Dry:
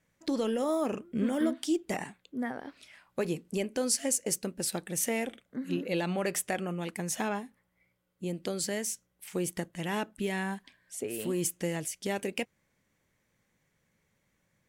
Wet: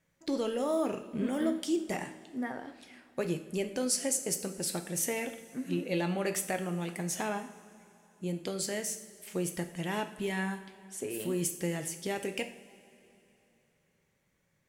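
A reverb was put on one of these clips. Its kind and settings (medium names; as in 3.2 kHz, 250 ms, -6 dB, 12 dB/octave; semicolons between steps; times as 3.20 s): two-slope reverb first 0.56 s, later 3.2 s, from -16 dB, DRR 6.5 dB; trim -2 dB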